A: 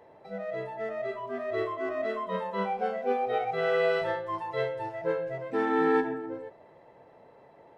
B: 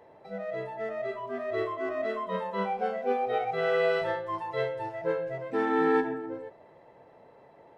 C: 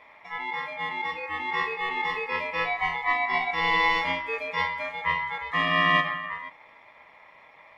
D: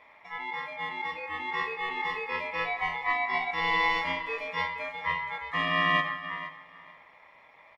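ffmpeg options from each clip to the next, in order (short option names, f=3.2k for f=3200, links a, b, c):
-af anull
-af "aeval=exprs='val(0)*sin(2*PI*1500*n/s)':c=same,volume=5.5dB"
-af "aecho=1:1:471|942:0.158|0.0269,volume=-3.5dB"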